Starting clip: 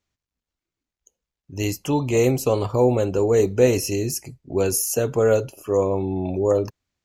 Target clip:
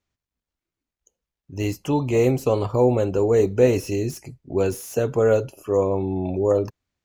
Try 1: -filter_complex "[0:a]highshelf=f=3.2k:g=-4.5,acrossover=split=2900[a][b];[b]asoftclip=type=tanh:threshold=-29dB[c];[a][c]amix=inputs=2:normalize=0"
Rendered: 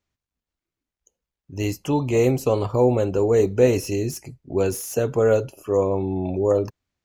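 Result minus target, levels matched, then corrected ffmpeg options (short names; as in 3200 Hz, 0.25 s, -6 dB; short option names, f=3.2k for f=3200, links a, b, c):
soft clip: distortion -5 dB
-filter_complex "[0:a]highshelf=f=3.2k:g=-4.5,acrossover=split=2900[a][b];[b]asoftclip=type=tanh:threshold=-36dB[c];[a][c]amix=inputs=2:normalize=0"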